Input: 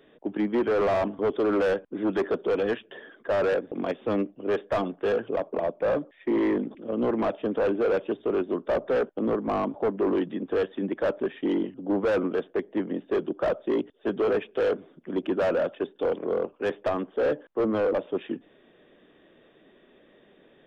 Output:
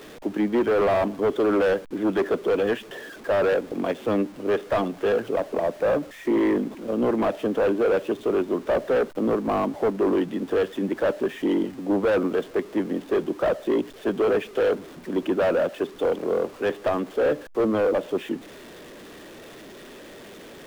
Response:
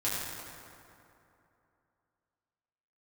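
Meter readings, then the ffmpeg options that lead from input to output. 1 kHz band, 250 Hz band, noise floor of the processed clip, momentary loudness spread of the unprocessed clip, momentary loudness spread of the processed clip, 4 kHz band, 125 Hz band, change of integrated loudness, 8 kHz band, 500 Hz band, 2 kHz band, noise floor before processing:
+3.0 dB, +3.0 dB, −44 dBFS, 6 LU, 13 LU, +4.5 dB, +3.0 dB, +3.0 dB, can't be measured, +3.0 dB, +3.5 dB, −59 dBFS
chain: -af "aeval=exprs='val(0)+0.5*0.00794*sgn(val(0))':channel_layout=same,volume=2.5dB"

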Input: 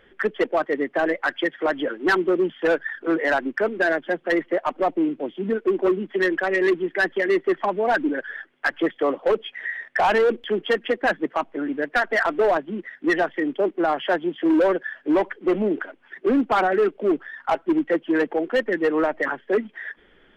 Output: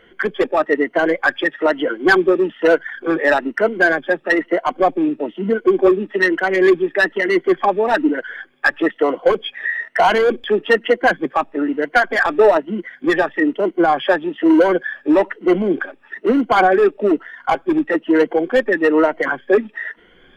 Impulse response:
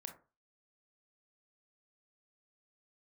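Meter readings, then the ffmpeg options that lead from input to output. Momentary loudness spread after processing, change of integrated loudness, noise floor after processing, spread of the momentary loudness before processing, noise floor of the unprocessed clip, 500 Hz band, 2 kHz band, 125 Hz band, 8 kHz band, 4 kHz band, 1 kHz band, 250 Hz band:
7 LU, +6.0 dB, −51 dBFS, 7 LU, −57 dBFS, +6.0 dB, +6.5 dB, +5.5 dB, can't be measured, +5.5 dB, +6.0 dB, +5.5 dB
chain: -af "afftfilt=real='re*pow(10,11/40*sin(2*PI*(1.9*log(max(b,1)*sr/1024/100)/log(2)-(1.1)*(pts-256)/sr)))':imag='im*pow(10,11/40*sin(2*PI*(1.9*log(max(b,1)*sr/1024/100)/log(2)-(1.1)*(pts-256)/sr)))':win_size=1024:overlap=0.75,volume=4.5dB"

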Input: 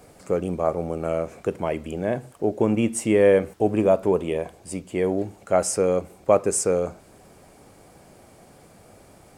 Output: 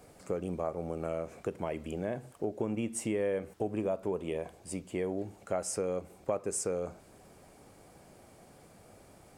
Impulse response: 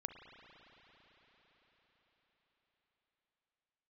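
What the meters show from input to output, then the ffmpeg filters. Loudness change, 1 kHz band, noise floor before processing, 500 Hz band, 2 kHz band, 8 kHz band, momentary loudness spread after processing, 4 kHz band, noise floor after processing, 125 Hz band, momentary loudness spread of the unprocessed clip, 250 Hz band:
−12.0 dB, −12.5 dB, −52 dBFS, −12.5 dB, −12.5 dB, −10.0 dB, 6 LU, −10.0 dB, −58 dBFS, −10.5 dB, 10 LU, −11.5 dB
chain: -af "acompressor=threshold=-25dB:ratio=3,volume=-6dB"

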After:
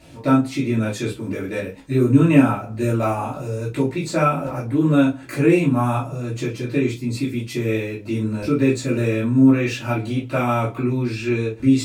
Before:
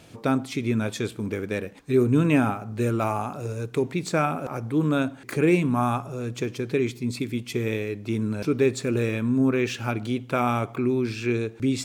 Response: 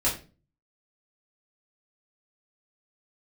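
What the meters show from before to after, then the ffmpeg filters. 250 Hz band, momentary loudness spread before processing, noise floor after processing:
+6.0 dB, 9 LU, −38 dBFS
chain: -filter_complex "[1:a]atrim=start_sample=2205,atrim=end_sample=3528[link_01];[0:a][link_01]afir=irnorm=-1:irlink=0,volume=-6.5dB"

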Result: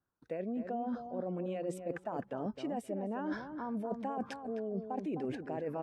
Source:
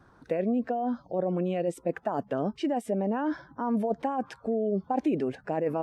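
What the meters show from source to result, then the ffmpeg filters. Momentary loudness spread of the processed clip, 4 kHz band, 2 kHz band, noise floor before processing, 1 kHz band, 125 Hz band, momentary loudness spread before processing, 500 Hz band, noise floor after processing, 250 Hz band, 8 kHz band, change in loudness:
3 LU, −7.0 dB, −6.0 dB, −59 dBFS, −8.5 dB, −8.5 dB, 4 LU, −9.0 dB, −66 dBFS, −8.5 dB, −5.5 dB, −8.5 dB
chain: -filter_complex "[0:a]agate=range=-30dB:threshold=-51dB:ratio=16:detection=peak,areverse,acompressor=threshold=-35dB:ratio=6,areverse,asplit=2[link_01][link_02];[link_02]adelay=259,lowpass=frequency=1400:poles=1,volume=-7dB,asplit=2[link_03][link_04];[link_04]adelay=259,lowpass=frequency=1400:poles=1,volume=0.17,asplit=2[link_05][link_06];[link_06]adelay=259,lowpass=frequency=1400:poles=1,volume=0.17[link_07];[link_01][link_03][link_05][link_07]amix=inputs=4:normalize=0"

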